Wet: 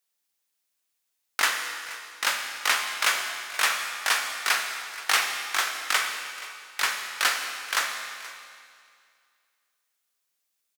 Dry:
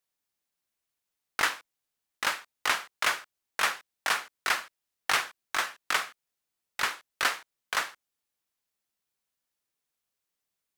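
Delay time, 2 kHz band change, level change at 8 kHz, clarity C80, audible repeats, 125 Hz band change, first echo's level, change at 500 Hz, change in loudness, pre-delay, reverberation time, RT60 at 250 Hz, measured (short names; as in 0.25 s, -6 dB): 0.477 s, +4.0 dB, +7.5 dB, 5.5 dB, 1, n/a, -17.5 dB, +1.0 dB, +4.0 dB, 14 ms, 2.2 s, 2.2 s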